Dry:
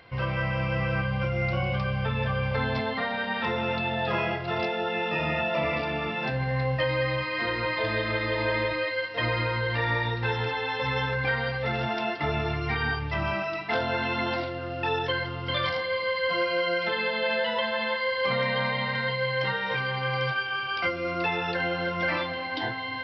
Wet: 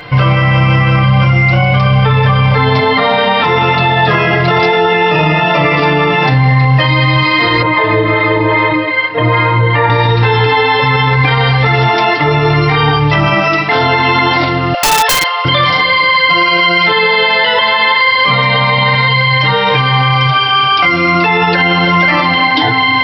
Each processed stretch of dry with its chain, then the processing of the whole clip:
7.62–9.90 s: harmonic tremolo 2.5 Hz, depth 50%, crossover 530 Hz + band-pass 100–2000 Hz
14.74–15.45 s: steep high-pass 490 Hz 96 dB/octave + integer overflow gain 22.5 dB
whole clip: comb 6.7 ms, depth 78%; loudness maximiser +22 dB; trim -1 dB

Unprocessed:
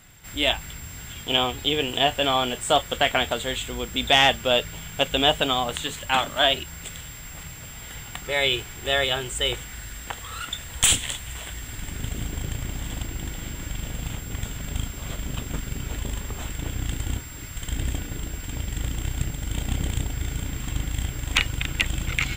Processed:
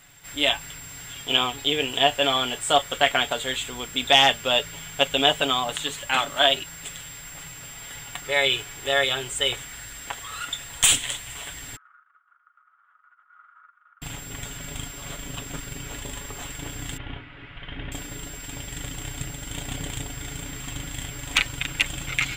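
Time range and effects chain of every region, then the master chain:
11.76–14.02 s: compressor with a negative ratio -34 dBFS, ratio -0.5 + Butterworth band-pass 1.3 kHz, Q 5.6
16.97–17.92 s: steep low-pass 3.2 kHz + hum notches 50/100/150/200/250/300/350 Hz
whole clip: bass shelf 300 Hz -8.5 dB; comb 7.1 ms, depth 53%

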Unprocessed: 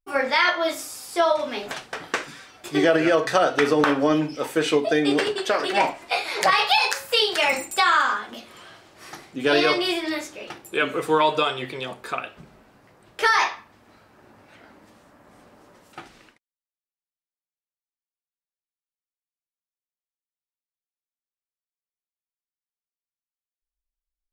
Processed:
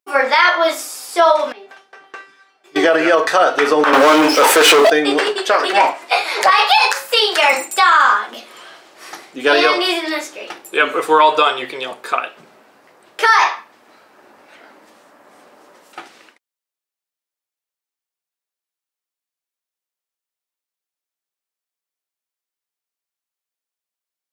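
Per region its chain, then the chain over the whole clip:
1.52–2.76 s: low-pass 2.6 kHz 6 dB/octave + feedback comb 390 Hz, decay 0.35 s, mix 90%
3.93–4.90 s: high-pass 330 Hz + waveshaping leveller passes 5
whole clip: high-pass 350 Hz 12 dB/octave; dynamic bell 1.1 kHz, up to +5 dB, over -33 dBFS, Q 1.1; loudness maximiser +8 dB; trim -1 dB

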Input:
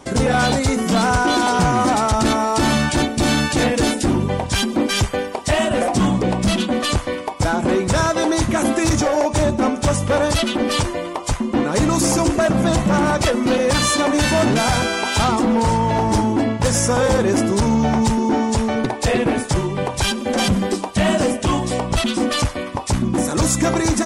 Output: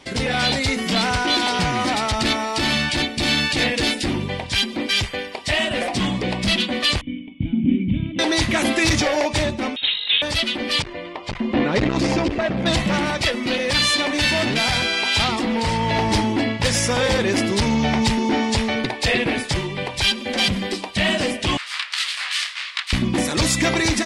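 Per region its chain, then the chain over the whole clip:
7.01–8.19 s: cascade formant filter i + resonant low shelf 310 Hz +11 dB, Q 1.5
9.76–10.22 s: high-pass 270 Hz + band-stop 570 Hz, Q 6.1 + frequency inversion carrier 4 kHz
10.82–12.66 s: tape spacing loss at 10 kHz 22 dB + transformer saturation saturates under 240 Hz
21.57–22.93 s: self-modulated delay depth 0.8 ms + elliptic band-pass 1.2–9.1 kHz, stop band 80 dB + detune thickener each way 60 cents
whole clip: high-order bell 3 kHz +11 dB; level rider; trim -7 dB

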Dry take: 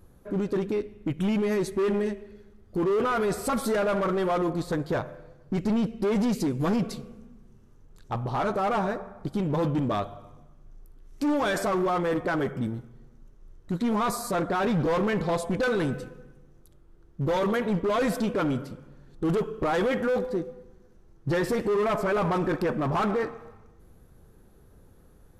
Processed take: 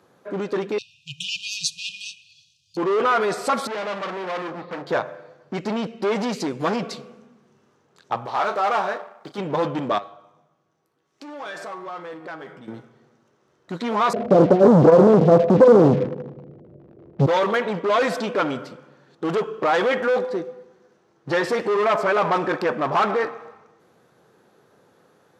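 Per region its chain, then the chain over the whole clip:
0.78–2.77 s: brick-wall FIR band-stop 160–2400 Hz + peaking EQ 5.5 kHz +14.5 dB 1.9 oct
3.67–4.87 s: cabinet simulation 130–2300 Hz, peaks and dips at 200 Hz +6 dB, 730 Hz -9 dB, 1.5 kHz -8 dB + hard clipper -32.5 dBFS + doubling 34 ms -12 dB
8.25–9.38 s: companding laws mixed up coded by A + bass shelf 340 Hz -9.5 dB + doubling 34 ms -11 dB
9.98–12.68 s: feedback comb 160 Hz, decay 0.44 s, mix 70% + compression, threshold -37 dBFS
14.13–17.26 s: steep low-pass 670 Hz 96 dB/octave + tilt EQ -4.5 dB/octave + waveshaping leveller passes 2
whole clip: high-pass 130 Hz 24 dB/octave; three-band isolator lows -12 dB, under 430 Hz, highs -17 dB, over 6.9 kHz; trim +8 dB

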